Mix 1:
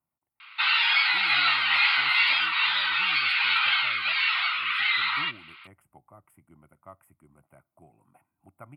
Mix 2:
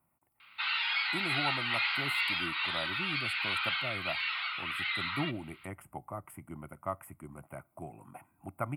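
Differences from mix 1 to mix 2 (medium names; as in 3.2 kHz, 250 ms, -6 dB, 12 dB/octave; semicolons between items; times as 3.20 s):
speech +11.5 dB; background -9.5 dB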